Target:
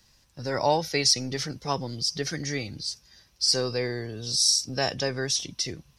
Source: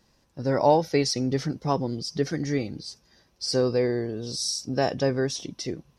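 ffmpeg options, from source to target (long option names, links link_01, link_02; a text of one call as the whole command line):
ffmpeg -i in.wav -filter_complex "[0:a]tiltshelf=frequency=1200:gain=-8,acrossover=split=140|2300[link_01][link_02][link_03];[link_01]aeval=exprs='0.0141*sin(PI/2*2.51*val(0)/0.0141)':channel_layout=same[link_04];[link_04][link_02][link_03]amix=inputs=3:normalize=0" out.wav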